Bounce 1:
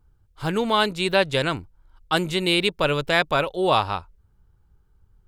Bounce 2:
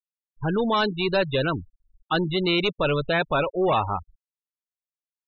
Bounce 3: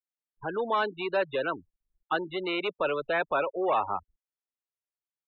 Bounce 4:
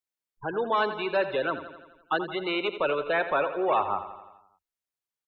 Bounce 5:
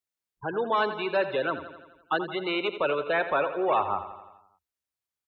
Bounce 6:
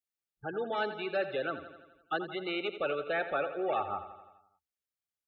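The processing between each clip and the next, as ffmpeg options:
-af "asoftclip=type=tanh:threshold=-19.5dB,afftfilt=real='re*gte(hypot(re,im),0.0501)':imag='im*gte(hypot(re,im),0.0501)':win_size=1024:overlap=0.75,volume=3dB"
-filter_complex "[0:a]acrossover=split=210 2800:gain=0.178 1 0.112[a][b][c];[a][b][c]amix=inputs=3:normalize=0,acrossover=split=350|560[d][e][f];[d]acompressor=threshold=-41dB:ratio=6[g];[g][e][f]amix=inputs=3:normalize=0,volume=-3dB"
-af "aecho=1:1:85|170|255|340|425|510|595:0.266|0.16|0.0958|0.0575|0.0345|0.0207|0.0124,volume=1.5dB"
-af "highpass=50,equalizer=f=65:w=1.8:g=10.5"
-af "asuperstop=centerf=1000:order=20:qfactor=4.5,volume=-6dB"

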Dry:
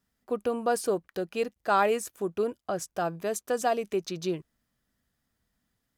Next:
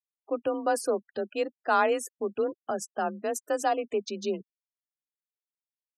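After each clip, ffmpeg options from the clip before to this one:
-af "afreqshift=35,afftfilt=real='re*gte(hypot(re,im),0.00891)':imag='im*gte(hypot(re,im),0.00891)':win_size=1024:overlap=0.75"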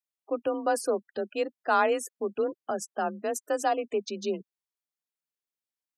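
-af "highpass=110"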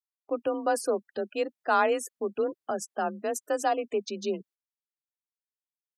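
-af "agate=range=-22dB:threshold=-53dB:ratio=16:detection=peak"

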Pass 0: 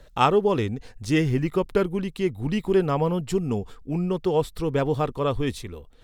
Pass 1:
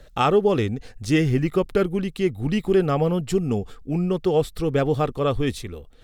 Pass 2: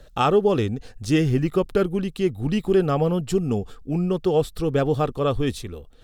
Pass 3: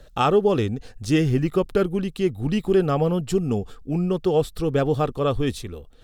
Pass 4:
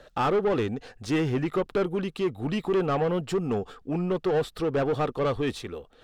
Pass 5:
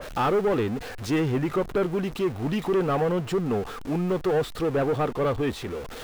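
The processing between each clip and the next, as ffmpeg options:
-af "bandreject=f=970:w=6.6,alimiter=level_in=10dB:limit=-1dB:release=50:level=0:latency=1,volume=-7.5dB"
-af "equalizer=f=2.1k:t=o:w=0.32:g=-6"
-af anull
-filter_complex "[0:a]asplit=2[a][b];[b]highpass=f=720:p=1,volume=21dB,asoftclip=type=tanh:threshold=-8.5dB[c];[a][c]amix=inputs=2:normalize=0,lowpass=f=1.7k:p=1,volume=-6dB,volume=-8dB"
-af "aeval=exprs='val(0)+0.5*0.0237*sgn(val(0))':c=same,adynamicequalizer=threshold=0.00631:dfrequency=2800:dqfactor=0.7:tfrequency=2800:tqfactor=0.7:attack=5:release=100:ratio=0.375:range=3.5:mode=cutabove:tftype=highshelf"

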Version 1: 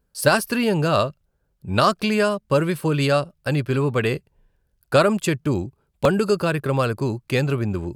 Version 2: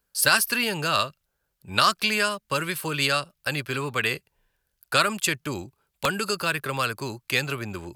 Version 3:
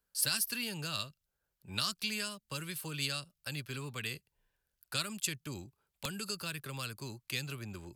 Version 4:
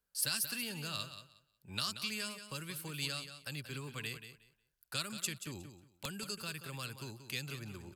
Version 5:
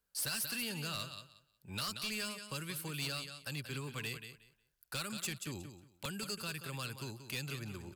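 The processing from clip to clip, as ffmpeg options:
-filter_complex "[0:a]tiltshelf=f=710:g=-8.5,acrossover=split=380|890[a][b][c];[b]acompressor=threshold=-32dB:ratio=6[d];[a][d][c]amix=inputs=3:normalize=0,equalizer=f=13k:w=4.6:g=6,volume=-3.5dB"
-filter_complex "[0:a]acrossover=split=250|3000[a][b][c];[b]acompressor=threshold=-46dB:ratio=2[d];[a][d][c]amix=inputs=3:normalize=0,volume=-8dB"
-af "aecho=1:1:181|362|543:0.299|0.0567|0.0108,volume=-3dB"
-af "volume=35.5dB,asoftclip=hard,volume=-35.5dB,volume=2dB"

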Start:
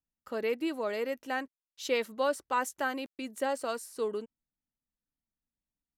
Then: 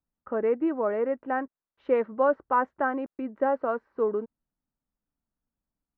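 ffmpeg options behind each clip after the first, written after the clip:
-af "lowpass=f=1.5k:w=0.5412,lowpass=f=1.5k:w=1.3066,volume=6.5dB"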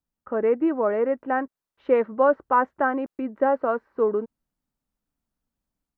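-af "dynaudnorm=f=210:g=3:m=4dB"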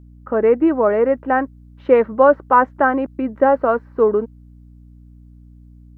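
-af "aeval=exprs='val(0)+0.00355*(sin(2*PI*60*n/s)+sin(2*PI*2*60*n/s)/2+sin(2*PI*3*60*n/s)/3+sin(2*PI*4*60*n/s)/4+sin(2*PI*5*60*n/s)/5)':c=same,volume=7dB"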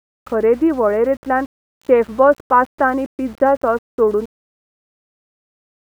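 -af "aeval=exprs='val(0)*gte(abs(val(0)),0.0158)':c=same"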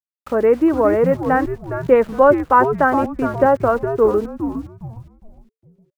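-filter_complex "[0:a]asplit=5[a][b][c][d][e];[b]adelay=411,afreqshift=-150,volume=-8.5dB[f];[c]adelay=822,afreqshift=-300,volume=-17.9dB[g];[d]adelay=1233,afreqshift=-450,volume=-27.2dB[h];[e]adelay=1644,afreqshift=-600,volume=-36.6dB[i];[a][f][g][h][i]amix=inputs=5:normalize=0"

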